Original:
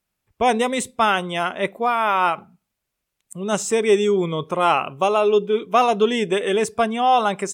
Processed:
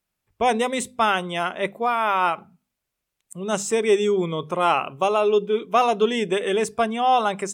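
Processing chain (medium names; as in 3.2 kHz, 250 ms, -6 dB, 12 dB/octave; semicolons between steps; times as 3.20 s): hum notches 50/100/150/200/250 Hz; trim -2 dB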